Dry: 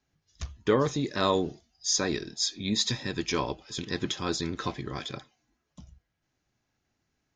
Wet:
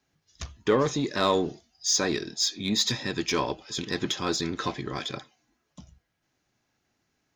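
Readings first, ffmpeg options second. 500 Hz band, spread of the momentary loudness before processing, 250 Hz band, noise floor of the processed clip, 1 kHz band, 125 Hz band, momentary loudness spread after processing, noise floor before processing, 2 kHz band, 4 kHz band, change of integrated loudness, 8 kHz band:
+2.0 dB, 11 LU, +1.5 dB, -77 dBFS, +2.5 dB, -0.5 dB, 10 LU, -80 dBFS, +3.0 dB, +3.0 dB, +2.0 dB, +2.5 dB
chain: -filter_complex "[0:a]lowshelf=f=99:g=-10,asplit=2[a][b];[b]asoftclip=type=tanh:threshold=-28.5dB,volume=-3.5dB[c];[a][c]amix=inputs=2:normalize=0"

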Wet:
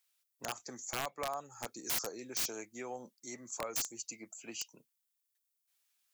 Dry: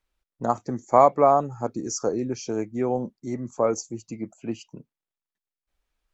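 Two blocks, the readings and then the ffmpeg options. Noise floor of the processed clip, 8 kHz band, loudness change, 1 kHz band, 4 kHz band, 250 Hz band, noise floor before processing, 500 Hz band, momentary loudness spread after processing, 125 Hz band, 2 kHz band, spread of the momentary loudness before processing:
-84 dBFS, n/a, -15.0 dB, -20.5 dB, +2.5 dB, -20.5 dB, under -85 dBFS, -21.5 dB, 11 LU, -21.5 dB, -1.0 dB, 17 LU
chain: -filter_complex "[0:a]acrossover=split=150[a][b];[b]acompressor=threshold=-25dB:ratio=5[c];[a][c]amix=inputs=2:normalize=0,aderivative,aeval=exprs='(mod(75*val(0)+1,2)-1)/75':c=same,volume=9.5dB"

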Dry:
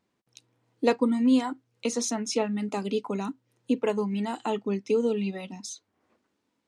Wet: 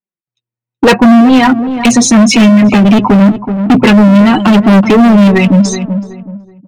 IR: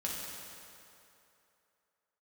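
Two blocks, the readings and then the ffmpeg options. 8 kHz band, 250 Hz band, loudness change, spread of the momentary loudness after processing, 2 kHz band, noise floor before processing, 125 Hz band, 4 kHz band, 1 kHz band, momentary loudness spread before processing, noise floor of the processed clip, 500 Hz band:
+19.0 dB, +23.0 dB, +21.5 dB, 7 LU, +25.5 dB, -78 dBFS, n/a, +21.0 dB, +21.5 dB, 14 LU, under -85 dBFS, +15.5 dB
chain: -filter_complex "[0:a]afftdn=nr=20:nf=-42,agate=range=-33dB:threshold=-43dB:ratio=3:detection=peak,highshelf=f=3.5k:t=q:w=1.5:g=-13,aecho=1:1:5.4:0.36,acrossover=split=700|1800[a][b][c];[c]dynaudnorm=f=310:g=9:m=8dB[d];[a][b][d]amix=inputs=3:normalize=0,asubboost=boost=9.5:cutoff=190,asoftclip=type=tanh:threshold=-18.5dB,flanger=delay=4.9:depth=3.8:regen=11:speed=0.86:shape=sinusoidal,asoftclip=type=hard:threshold=-31.5dB,asplit=2[e][f];[f]adelay=376,lowpass=f=1.2k:p=1,volume=-14dB,asplit=2[g][h];[h]adelay=376,lowpass=f=1.2k:p=1,volume=0.32,asplit=2[i][j];[j]adelay=376,lowpass=f=1.2k:p=1,volume=0.32[k];[e][g][i][k]amix=inputs=4:normalize=0,alimiter=level_in=34.5dB:limit=-1dB:release=50:level=0:latency=1,volume=-1dB"

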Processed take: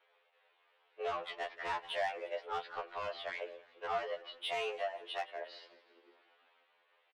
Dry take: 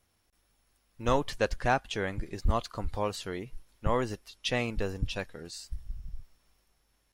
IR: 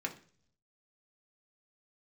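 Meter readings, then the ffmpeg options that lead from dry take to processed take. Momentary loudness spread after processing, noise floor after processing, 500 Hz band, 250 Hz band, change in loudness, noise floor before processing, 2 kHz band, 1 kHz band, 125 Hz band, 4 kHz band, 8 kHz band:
9 LU, -74 dBFS, -6.5 dB, -25.0 dB, -7.0 dB, -73 dBFS, -5.5 dB, -5.0 dB, under -30 dB, -4.5 dB, -16.5 dB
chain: -filter_complex "[0:a]alimiter=level_in=3dB:limit=-24dB:level=0:latency=1:release=433,volume=-3dB,highpass=f=250:t=q:w=0.5412,highpass=f=250:t=q:w=1.307,lowpass=f=3.3k:t=q:w=0.5176,lowpass=f=3.3k:t=q:w=0.7071,lowpass=f=3.3k:t=q:w=1.932,afreqshift=200,asoftclip=type=tanh:threshold=-36.5dB,asplit=5[a][b][c][d][e];[b]adelay=175,afreqshift=-39,volume=-18dB[f];[c]adelay=350,afreqshift=-78,volume=-24.2dB[g];[d]adelay=525,afreqshift=-117,volume=-30.4dB[h];[e]adelay=700,afreqshift=-156,volume=-36.6dB[i];[a][f][g][h][i]amix=inputs=5:normalize=0,asplit=2[j][k];[1:a]atrim=start_sample=2205[l];[k][l]afir=irnorm=-1:irlink=0,volume=-17.5dB[m];[j][m]amix=inputs=2:normalize=0,afftfilt=real='re*2*eq(mod(b,4),0)':imag='im*2*eq(mod(b,4),0)':win_size=2048:overlap=0.75,volume=7.5dB"

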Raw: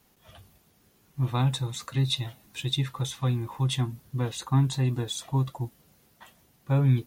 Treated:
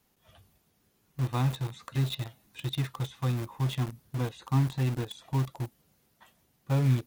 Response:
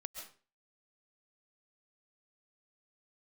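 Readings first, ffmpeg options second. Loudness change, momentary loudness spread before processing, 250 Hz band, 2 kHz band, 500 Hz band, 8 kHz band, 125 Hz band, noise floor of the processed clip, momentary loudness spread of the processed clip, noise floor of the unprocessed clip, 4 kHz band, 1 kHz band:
-3.0 dB, 7 LU, -2.5 dB, -1.5 dB, -2.5 dB, -9.5 dB, -3.0 dB, -71 dBFS, 10 LU, -64 dBFS, -8.0 dB, -2.5 dB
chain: -filter_complex "[0:a]acrossover=split=3500[a][b];[b]acompressor=threshold=-50dB:ratio=4:attack=1:release=60[c];[a][c]amix=inputs=2:normalize=0,asplit=2[d][e];[e]acrusher=bits=4:mix=0:aa=0.000001,volume=-4dB[f];[d][f]amix=inputs=2:normalize=0,volume=-7dB"

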